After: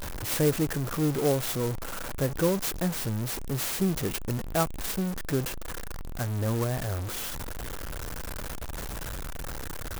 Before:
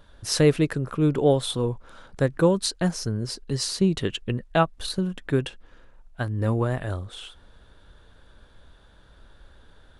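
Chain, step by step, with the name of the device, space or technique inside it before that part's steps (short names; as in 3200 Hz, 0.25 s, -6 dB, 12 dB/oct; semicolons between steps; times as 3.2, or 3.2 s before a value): early CD player with a faulty converter (zero-crossing step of -21.5 dBFS; clock jitter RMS 0.078 ms); gain -7.5 dB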